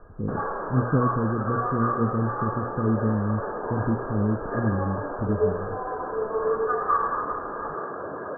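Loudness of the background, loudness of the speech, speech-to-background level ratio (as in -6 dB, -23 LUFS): -29.0 LUFS, -28.0 LUFS, 1.0 dB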